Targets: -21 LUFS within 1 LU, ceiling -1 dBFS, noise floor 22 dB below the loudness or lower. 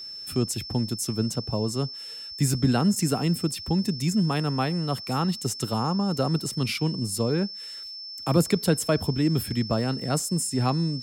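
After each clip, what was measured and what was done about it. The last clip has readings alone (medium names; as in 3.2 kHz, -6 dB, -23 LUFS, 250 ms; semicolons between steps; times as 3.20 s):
steady tone 5.3 kHz; tone level -36 dBFS; loudness -26.0 LUFS; peak level -7.5 dBFS; loudness target -21.0 LUFS
-> band-stop 5.3 kHz, Q 30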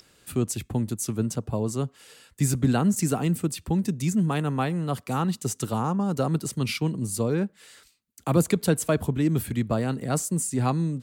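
steady tone not found; loudness -26.5 LUFS; peak level -7.5 dBFS; loudness target -21.0 LUFS
-> trim +5.5 dB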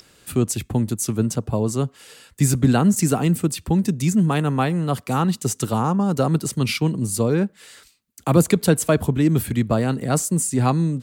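loudness -21.0 LUFS; peak level -2.0 dBFS; noise floor -56 dBFS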